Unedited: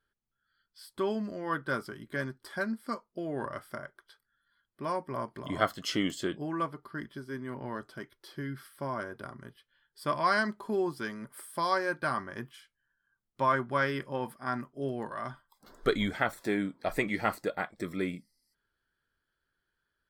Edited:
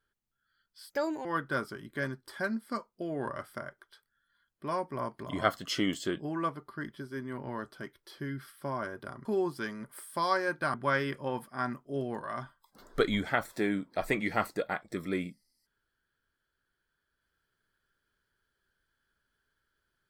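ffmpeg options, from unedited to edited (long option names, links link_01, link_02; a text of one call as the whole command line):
ffmpeg -i in.wav -filter_complex "[0:a]asplit=5[link_01][link_02][link_03][link_04][link_05];[link_01]atrim=end=0.904[link_06];[link_02]atrim=start=0.9:end=1.42,asetpts=PTS-STARTPTS,asetrate=65268,aresample=44100[link_07];[link_03]atrim=start=1.416:end=9.422[link_08];[link_04]atrim=start=10.658:end=12.152[link_09];[link_05]atrim=start=13.618[link_10];[link_06][link_07]acrossfade=duration=0.004:curve1=hsin:curve2=hsin[link_11];[link_11][link_08]acrossfade=duration=0.004:curve1=hsin:curve2=hsin[link_12];[link_12][link_09]acrossfade=duration=0.004:curve1=hsin:curve2=hsin[link_13];[link_13][link_10]acrossfade=duration=0.004:curve1=hsin:curve2=hsin" out.wav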